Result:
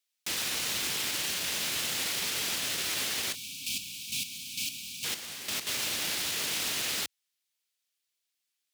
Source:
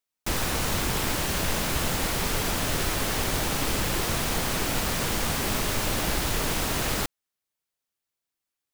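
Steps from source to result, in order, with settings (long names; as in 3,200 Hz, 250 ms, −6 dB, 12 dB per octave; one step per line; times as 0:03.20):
meter weighting curve D
0:03.35–0:05.04: gain on a spectral selection 290–2,200 Hz −26 dB
high-pass filter 67 Hz
high-shelf EQ 7,000 Hz +9.5 dB
brickwall limiter −16 dBFS, peak gain reduction 9.5 dB
0:03.21–0:05.67: square-wave tremolo 2.2 Hz, depth 65%, duty 25%
level −6.5 dB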